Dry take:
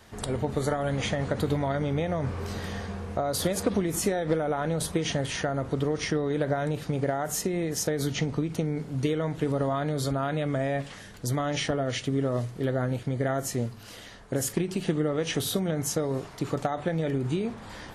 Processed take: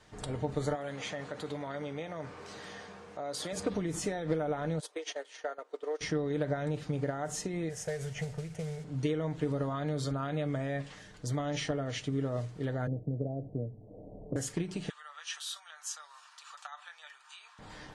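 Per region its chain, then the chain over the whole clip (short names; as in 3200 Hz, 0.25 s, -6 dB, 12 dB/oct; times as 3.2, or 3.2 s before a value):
0.75–3.53 HPF 170 Hz 6 dB/oct + low shelf 250 Hz -10 dB + transient shaper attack -5 dB, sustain 0 dB
4.8–6.01 steep high-pass 390 Hz + gate -32 dBFS, range -15 dB
7.69–8.84 fixed phaser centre 1100 Hz, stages 6 + modulation noise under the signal 14 dB
12.87–14.36 steep low-pass 690 Hz 48 dB/oct + three-band squash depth 70%
14.89–17.59 steep high-pass 1000 Hz + notch 2100 Hz, Q 5.7
whole clip: LPF 8900 Hz 24 dB/oct; comb 6.6 ms, depth 40%; gain -7 dB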